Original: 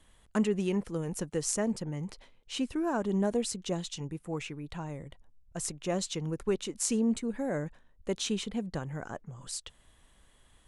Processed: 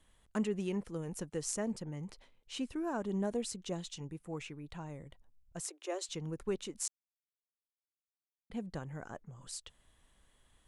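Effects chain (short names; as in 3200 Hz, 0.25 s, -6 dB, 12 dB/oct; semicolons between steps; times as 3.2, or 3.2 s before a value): 5.6–6.09 steep high-pass 310 Hz 96 dB/oct; 6.88–8.5 mute; gain -6 dB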